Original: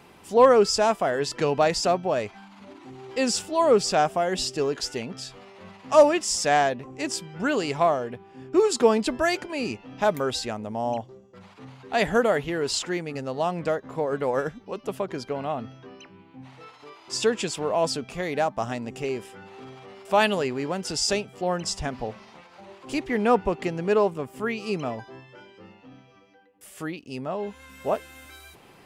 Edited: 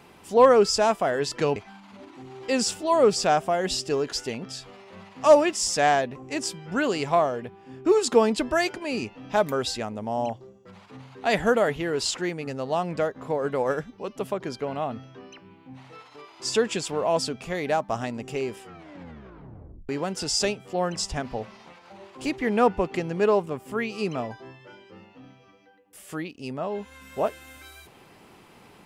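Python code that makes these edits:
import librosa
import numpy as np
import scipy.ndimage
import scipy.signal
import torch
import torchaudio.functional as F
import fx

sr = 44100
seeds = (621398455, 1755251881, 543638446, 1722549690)

y = fx.edit(x, sr, fx.cut(start_s=1.56, length_s=0.68),
    fx.tape_stop(start_s=19.29, length_s=1.28), tone=tone)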